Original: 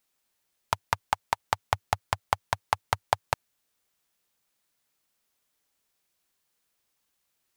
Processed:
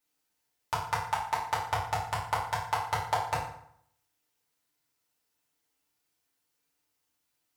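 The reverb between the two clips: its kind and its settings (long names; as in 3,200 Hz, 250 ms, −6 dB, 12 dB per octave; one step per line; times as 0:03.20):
feedback delay network reverb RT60 0.68 s, low-frequency decay 1.1×, high-frequency decay 0.75×, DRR −7.5 dB
level −10 dB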